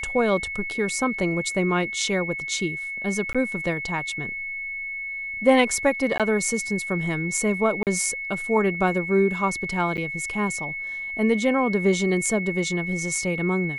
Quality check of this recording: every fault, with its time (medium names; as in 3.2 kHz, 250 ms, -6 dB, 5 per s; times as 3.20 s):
whine 2.2 kHz -29 dBFS
3.33–3.35 s: dropout 16 ms
6.18–6.20 s: dropout 17 ms
7.83–7.87 s: dropout 38 ms
9.97–9.98 s: dropout 8.9 ms